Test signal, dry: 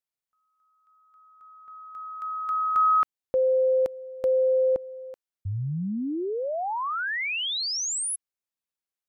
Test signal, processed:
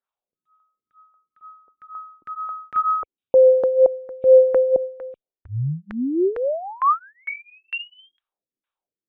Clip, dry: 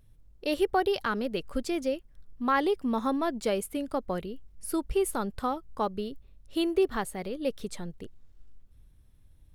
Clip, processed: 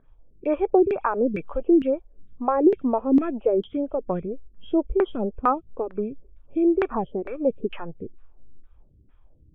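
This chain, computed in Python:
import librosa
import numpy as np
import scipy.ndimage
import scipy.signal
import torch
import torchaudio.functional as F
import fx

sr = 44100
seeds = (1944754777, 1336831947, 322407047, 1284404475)

y = fx.freq_compress(x, sr, knee_hz=2200.0, ratio=4.0)
y = fx.filter_lfo_lowpass(y, sr, shape='saw_down', hz=2.2, low_hz=270.0, high_hz=1700.0, q=2.7)
y = fx.stagger_phaser(y, sr, hz=2.1)
y = y * 10.0 ** (6.5 / 20.0)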